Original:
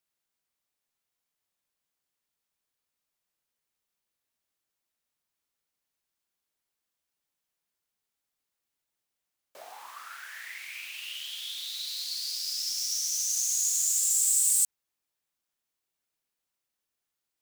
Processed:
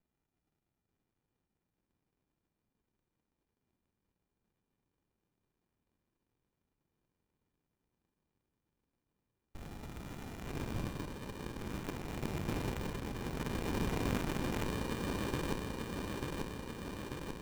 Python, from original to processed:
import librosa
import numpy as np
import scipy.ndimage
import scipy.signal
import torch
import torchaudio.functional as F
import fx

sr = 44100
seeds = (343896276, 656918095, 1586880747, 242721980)

p1 = scipy.signal.sosfilt(scipy.signal.butter(2, 400.0, 'highpass', fs=sr, output='sos'), x)
p2 = fx.high_shelf(p1, sr, hz=2900.0, db=-11.0)
p3 = fx.rider(p2, sr, range_db=3, speed_s=0.5)
p4 = p2 + (p3 * librosa.db_to_amplitude(0.5))
p5 = fx.tube_stage(p4, sr, drive_db=31.0, bias=0.55)
p6 = fx.sample_hold(p5, sr, seeds[0], rate_hz=2400.0, jitter_pct=0)
p7 = fx.comb_fb(p6, sr, f0_hz=570.0, decay_s=0.47, harmonics='all', damping=0.0, mix_pct=90, at=(10.88, 11.58))
p8 = p7 + fx.echo_wet_highpass(p7, sr, ms=890, feedback_pct=69, hz=1800.0, wet_db=-5.5, dry=0)
p9 = fx.running_max(p8, sr, window=65)
y = p9 * librosa.db_to_amplitude(6.0)